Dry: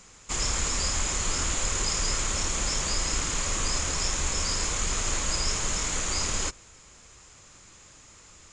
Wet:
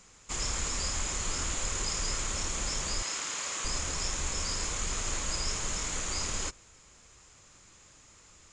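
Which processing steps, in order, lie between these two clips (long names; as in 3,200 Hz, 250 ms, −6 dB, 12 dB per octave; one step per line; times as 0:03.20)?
0:03.02–0:03.65: meter weighting curve A
level −5 dB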